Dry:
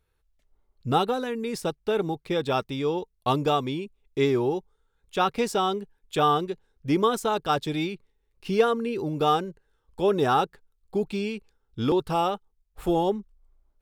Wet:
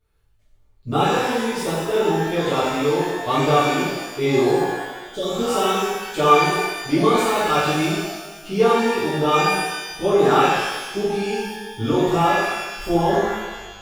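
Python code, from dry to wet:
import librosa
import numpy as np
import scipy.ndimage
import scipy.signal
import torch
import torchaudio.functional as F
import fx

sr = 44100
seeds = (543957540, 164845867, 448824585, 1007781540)

y = fx.spec_repair(x, sr, seeds[0], start_s=4.89, length_s=0.65, low_hz=710.0, high_hz=3000.0, source='both')
y = fx.rev_shimmer(y, sr, seeds[1], rt60_s=1.2, semitones=12, shimmer_db=-8, drr_db=-11.5)
y = F.gain(torch.from_numpy(y), -6.0).numpy()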